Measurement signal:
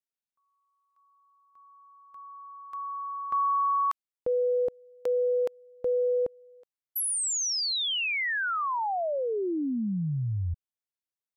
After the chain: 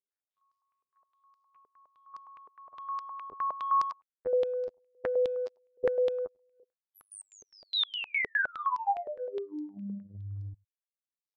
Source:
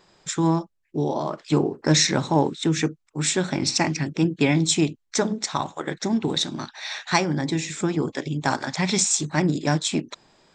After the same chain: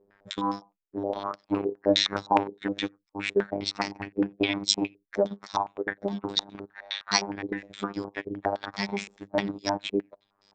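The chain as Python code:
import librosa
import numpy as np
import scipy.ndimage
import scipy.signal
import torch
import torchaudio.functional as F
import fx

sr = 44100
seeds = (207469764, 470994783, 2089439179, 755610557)

y = x + 10.0 ** (-21.0 / 20.0) * np.pad(x, (int(94 * sr / 1000.0), 0))[:len(x)]
y = fx.robotise(y, sr, hz=100.0)
y = fx.transient(y, sr, attack_db=4, sustain_db=-11)
y = fx.dynamic_eq(y, sr, hz=140.0, q=0.74, threshold_db=-36.0, ratio=2.5, max_db=-3)
y = fx.filter_held_lowpass(y, sr, hz=9.7, low_hz=430.0, high_hz=5000.0)
y = y * 10.0 ** (-6.5 / 20.0)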